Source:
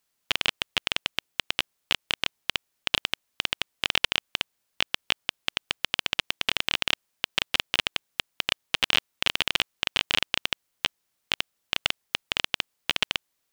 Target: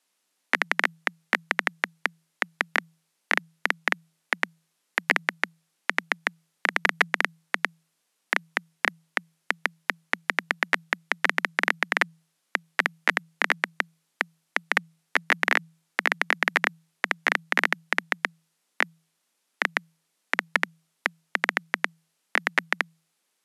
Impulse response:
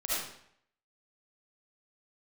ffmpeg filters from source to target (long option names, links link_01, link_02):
-af "afreqshift=280,asetrate=25442,aresample=44100,volume=1.5dB"